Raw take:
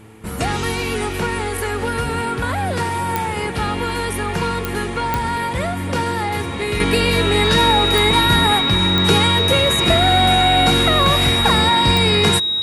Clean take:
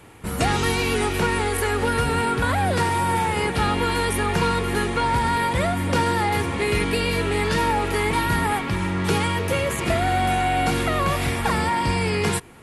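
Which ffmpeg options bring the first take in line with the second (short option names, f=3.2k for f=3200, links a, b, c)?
-af "adeclick=t=4,bandreject=f=109.3:t=h:w=4,bandreject=f=218.6:t=h:w=4,bandreject=f=327.9:t=h:w=4,bandreject=f=437.2:t=h:w=4,bandreject=f=3.8k:w=30,asetnsamples=n=441:p=0,asendcmd='6.8 volume volume -6dB',volume=0dB"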